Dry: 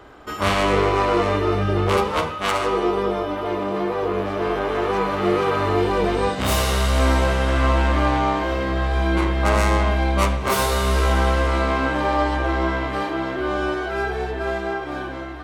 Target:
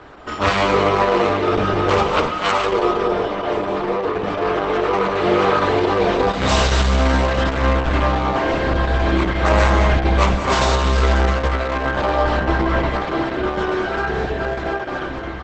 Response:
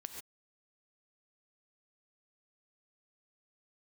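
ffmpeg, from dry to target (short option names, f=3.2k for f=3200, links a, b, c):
-filter_complex "[0:a]lowpass=6.5k,bandreject=f=50:t=h:w=6,bandreject=f=100:t=h:w=6,bandreject=f=150:t=h:w=6,bandreject=f=200:t=h:w=6,bandreject=f=250:t=h:w=6,bandreject=f=300:t=h:w=6,bandreject=f=350:t=h:w=6,bandreject=f=400:t=h:w=6,bandreject=f=450:t=h:w=6,aecho=1:1:1057:0.075,asplit=2[a][b];[1:a]atrim=start_sample=2205,asetrate=28665,aresample=44100[c];[b][c]afir=irnorm=-1:irlink=0,volume=-0.5dB[d];[a][d]amix=inputs=2:normalize=0" -ar 48000 -c:a libopus -b:a 10k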